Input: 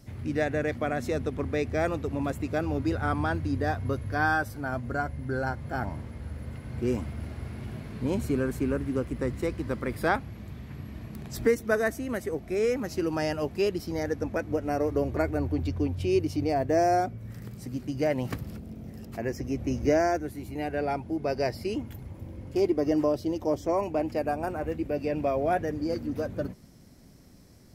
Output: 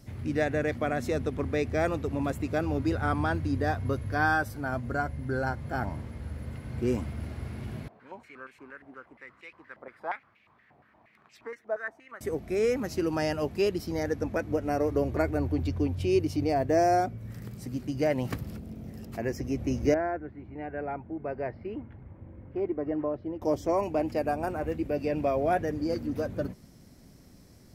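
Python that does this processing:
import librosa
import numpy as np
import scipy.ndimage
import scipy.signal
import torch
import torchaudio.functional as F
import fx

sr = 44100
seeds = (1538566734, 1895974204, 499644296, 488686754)

y = fx.filter_held_bandpass(x, sr, hz=8.5, low_hz=730.0, high_hz=2500.0, at=(7.88, 12.21))
y = fx.ladder_lowpass(y, sr, hz=2300.0, resonance_pct=25, at=(19.94, 23.42))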